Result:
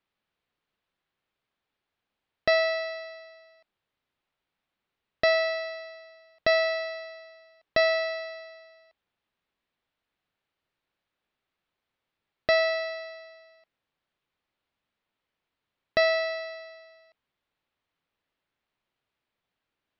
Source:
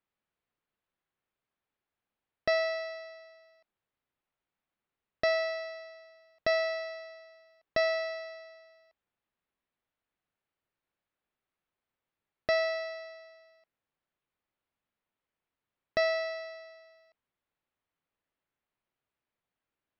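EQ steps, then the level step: resonant low-pass 4.1 kHz, resonance Q 1.5; +4.5 dB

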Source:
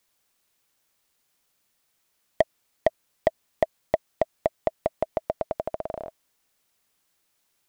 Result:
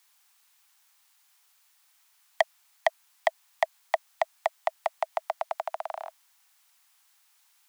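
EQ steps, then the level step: steep high-pass 750 Hz 48 dB/octave; +7.0 dB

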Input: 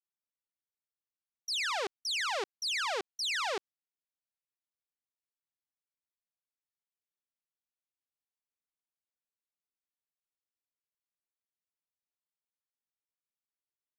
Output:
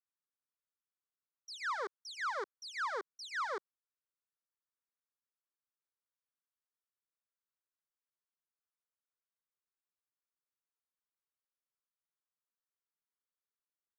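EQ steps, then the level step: band-pass filter 1.1 kHz, Q 0.67; static phaser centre 730 Hz, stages 6; +1.0 dB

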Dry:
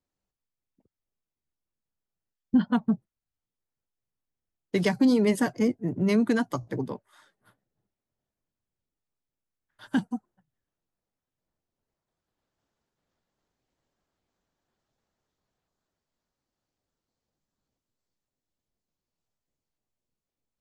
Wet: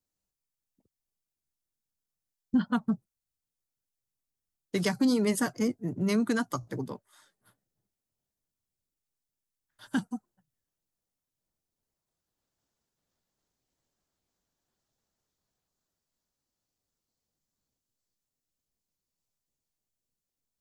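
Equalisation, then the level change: tone controls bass +2 dB, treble +10 dB; dynamic bell 1.3 kHz, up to +8 dB, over -50 dBFS, Q 2.9; -5.0 dB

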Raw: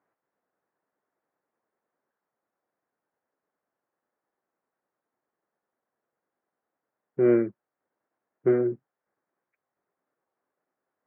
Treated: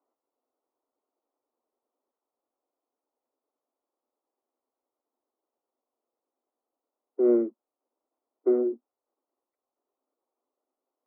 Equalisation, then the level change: Savitzky-Golay filter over 65 samples; steep high-pass 230 Hz 96 dB/octave; distance through air 450 m; 0.0 dB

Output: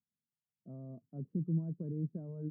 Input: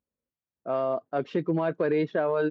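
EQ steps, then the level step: Butterworth band-pass 150 Hz, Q 1.4; distance through air 420 m; 0.0 dB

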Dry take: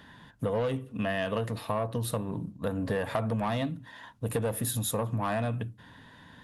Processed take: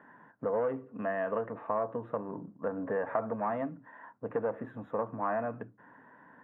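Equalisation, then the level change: high-pass 300 Hz 12 dB/octave; inverse Chebyshev low-pass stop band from 4.2 kHz, stop band 50 dB; 0.0 dB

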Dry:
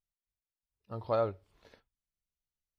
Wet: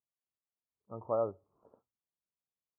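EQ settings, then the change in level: high-pass 140 Hz 12 dB/octave; elliptic low-pass 1.2 kHz, stop band 40 dB; -1.5 dB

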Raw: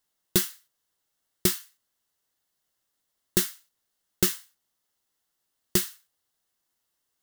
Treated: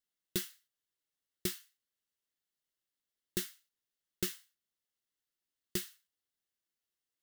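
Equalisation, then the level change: tone controls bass -7 dB, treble -8 dB; peaking EQ 860 Hz -12.5 dB 1.8 oct; -5.5 dB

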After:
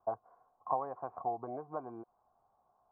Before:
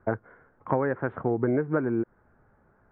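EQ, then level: cascade formant filter a; +4.5 dB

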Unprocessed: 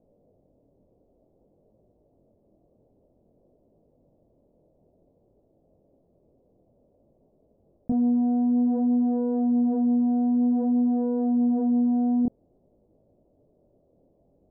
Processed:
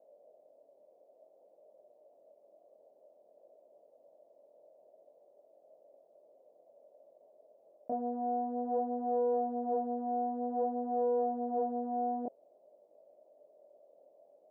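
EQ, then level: resonant high-pass 600 Hz, resonance Q 4.9; -4.0 dB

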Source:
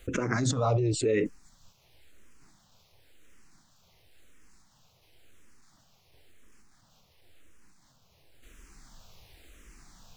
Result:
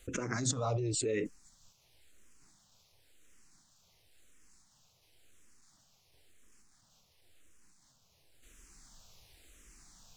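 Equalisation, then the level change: peaking EQ 7.9 kHz +9 dB 1.7 oct; -7.5 dB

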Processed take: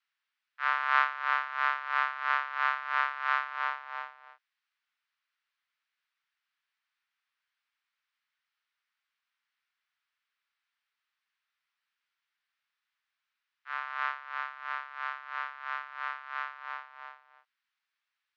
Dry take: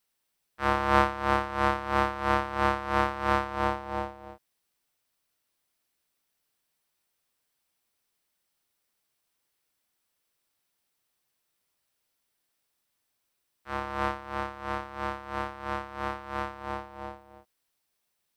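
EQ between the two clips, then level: high-pass 1.4 kHz 24 dB/octave; distance through air 180 m; tilt EQ -4 dB/octave; +8.0 dB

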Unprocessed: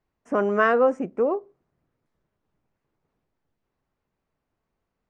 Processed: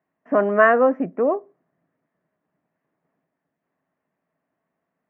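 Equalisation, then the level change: cabinet simulation 170–2900 Hz, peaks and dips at 170 Hz +9 dB, 270 Hz +7 dB, 650 Hz +10 dB, 1.1 kHz +4 dB, 1.8 kHz +9 dB; -1.0 dB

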